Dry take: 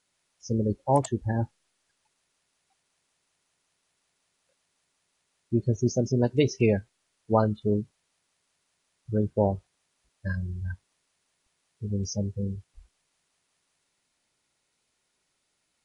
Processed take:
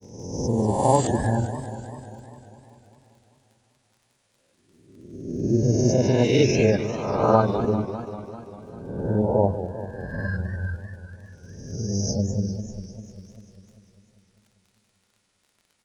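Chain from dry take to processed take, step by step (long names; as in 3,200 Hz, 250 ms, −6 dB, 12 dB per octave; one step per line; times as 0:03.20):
peak hold with a rise ahead of every peak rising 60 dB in 1.17 s
surface crackle 34 per second −48 dBFS
granular cloud, spray 28 ms, pitch spread up and down by 0 semitones
feedback echo with a swinging delay time 198 ms, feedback 68%, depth 192 cents, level −11.5 dB
level +3 dB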